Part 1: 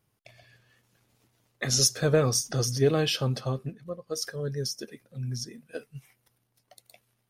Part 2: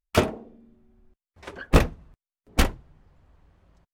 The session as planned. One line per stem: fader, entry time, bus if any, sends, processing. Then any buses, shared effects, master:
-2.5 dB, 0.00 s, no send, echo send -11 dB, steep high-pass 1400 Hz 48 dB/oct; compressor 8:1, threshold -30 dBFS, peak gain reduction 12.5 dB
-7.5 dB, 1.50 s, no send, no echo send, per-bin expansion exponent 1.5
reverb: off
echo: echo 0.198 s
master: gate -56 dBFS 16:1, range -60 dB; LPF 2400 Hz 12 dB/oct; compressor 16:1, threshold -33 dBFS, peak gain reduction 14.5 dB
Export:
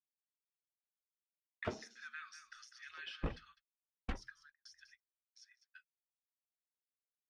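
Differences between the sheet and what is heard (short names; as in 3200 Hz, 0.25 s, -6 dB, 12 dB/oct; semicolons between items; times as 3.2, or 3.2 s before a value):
stem 1 -2.5 dB -> -9.0 dB; stem 2 -7.5 dB -> -16.0 dB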